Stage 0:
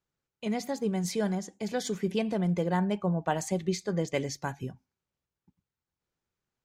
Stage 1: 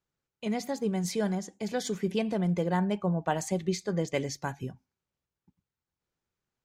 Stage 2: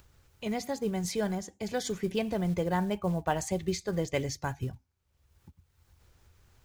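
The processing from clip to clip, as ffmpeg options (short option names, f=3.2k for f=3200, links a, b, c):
-af anull
-af "lowshelf=f=120:t=q:w=1.5:g=11.5,acrusher=bits=7:mode=log:mix=0:aa=0.000001,acompressor=mode=upward:threshold=-43dB:ratio=2.5"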